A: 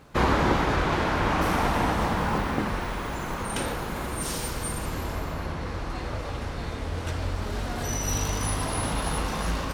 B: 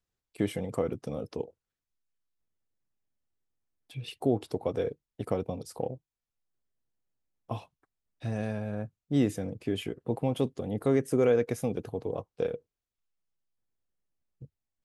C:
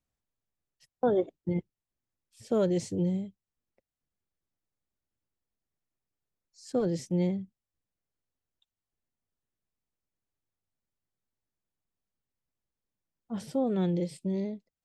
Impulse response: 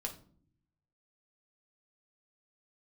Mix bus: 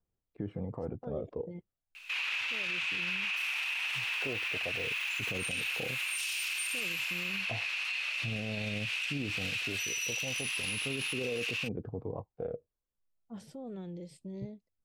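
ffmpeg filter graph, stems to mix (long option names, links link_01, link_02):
-filter_complex "[0:a]highpass=frequency=2600:width_type=q:width=11,adelay=1950,volume=1.5dB[link_01];[1:a]lowpass=1000,aphaser=in_gain=1:out_gain=1:delay=2:decay=0.45:speed=0.35:type=triangular,volume=-2dB[link_02];[2:a]alimiter=level_in=3.5dB:limit=-24dB:level=0:latency=1:release=88,volume=-3.5dB,volume=-9dB[link_03];[link_01][link_02]amix=inputs=2:normalize=0,acompressor=threshold=-25dB:ratio=6,volume=0dB[link_04];[link_03][link_04]amix=inputs=2:normalize=0,alimiter=level_in=2dB:limit=-24dB:level=0:latency=1:release=38,volume=-2dB"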